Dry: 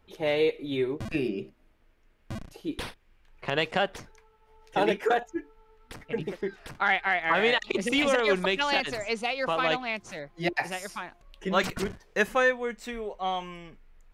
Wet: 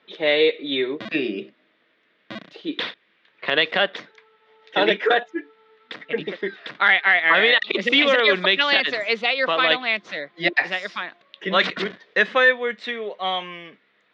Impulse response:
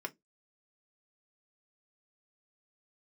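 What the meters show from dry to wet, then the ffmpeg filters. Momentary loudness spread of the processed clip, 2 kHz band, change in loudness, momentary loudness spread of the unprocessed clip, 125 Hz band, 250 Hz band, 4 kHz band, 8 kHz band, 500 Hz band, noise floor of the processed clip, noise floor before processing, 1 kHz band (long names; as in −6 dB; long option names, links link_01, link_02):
17 LU, +10.0 dB, +8.0 dB, 15 LU, −2.0 dB, +3.0 dB, +11.5 dB, can't be measured, +5.0 dB, −64 dBFS, −62 dBFS, +4.0 dB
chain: -af "highpass=frequency=210:width=0.5412,highpass=frequency=210:width=1.3066,equalizer=frequency=240:width_type=q:width=4:gain=-5,equalizer=frequency=370:width_type=q:width=4:gain=-4,equalizer=frequency=840:width_type=q:width=4:gain=-8,equalizer=frequency=1900:width_type=q:width=4:gain=6,equalizer=frequency=3600:width_type=q:width=4:gain=9,lowpass=frequency=4300:width=0.5412,lowpass=frequency=4300:width=1.3066,alimiter=level_in=12dB:limit=-1dB:release=50:level=0:latency=1,volume=-4.5dB"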